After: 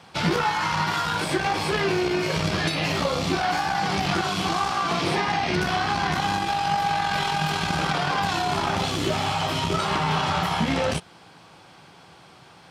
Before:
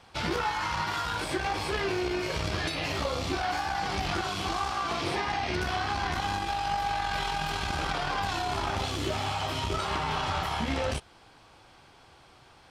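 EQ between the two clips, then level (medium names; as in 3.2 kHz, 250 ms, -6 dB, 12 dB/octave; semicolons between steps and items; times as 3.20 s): high-pass 110 Hz 12 dB/octave; peaking EQ 170 Hz +10.5 dB 0.36 oct; +6.0 dB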